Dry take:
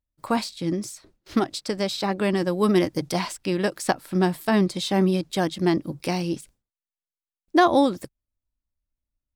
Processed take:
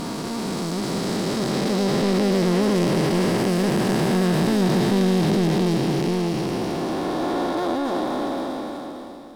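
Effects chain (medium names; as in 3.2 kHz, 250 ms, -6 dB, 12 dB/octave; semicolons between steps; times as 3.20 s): spectral blur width 1460 ms; power-law waveshaper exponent 0.7; harmony voices +4 st -9 dB; trim +5.5 dB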